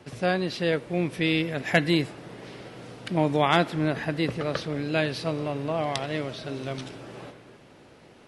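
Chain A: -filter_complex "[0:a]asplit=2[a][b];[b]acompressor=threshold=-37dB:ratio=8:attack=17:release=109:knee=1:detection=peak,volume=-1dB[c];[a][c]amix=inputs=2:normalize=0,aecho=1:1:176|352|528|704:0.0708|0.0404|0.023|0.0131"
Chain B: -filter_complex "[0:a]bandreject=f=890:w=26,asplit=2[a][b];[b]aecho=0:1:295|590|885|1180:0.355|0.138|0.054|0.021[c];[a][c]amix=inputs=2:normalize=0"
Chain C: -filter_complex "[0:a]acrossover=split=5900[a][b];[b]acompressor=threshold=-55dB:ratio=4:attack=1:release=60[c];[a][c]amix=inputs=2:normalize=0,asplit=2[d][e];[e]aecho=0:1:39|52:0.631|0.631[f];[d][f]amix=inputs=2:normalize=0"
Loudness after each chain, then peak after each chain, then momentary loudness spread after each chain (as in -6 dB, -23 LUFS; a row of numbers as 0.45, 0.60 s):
-25.5, -26.5, -24.0 LUFS; -5.0, -5.5, -4.0 dBFS; 15, 16, 20 LU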